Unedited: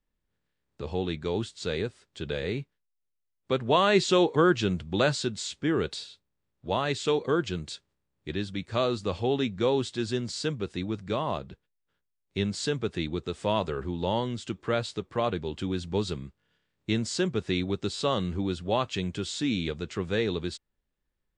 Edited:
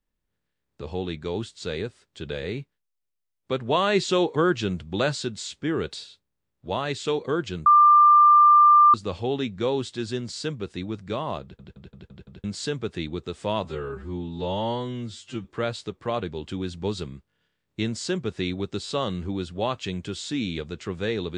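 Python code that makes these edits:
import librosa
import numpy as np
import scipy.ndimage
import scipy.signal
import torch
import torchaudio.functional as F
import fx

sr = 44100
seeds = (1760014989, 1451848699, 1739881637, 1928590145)

y = fx.edit(x, sr, fx.bleep(start_s=7.66, length_s=1.28, hz=1190.0, db=-11.0),
    fx.stutter_over(start_s=11.42, slice_s=0.17, count=6),
    fx.stretch_span(start_s=13.65, length_s=0.9, factor=2.0), tone=tone)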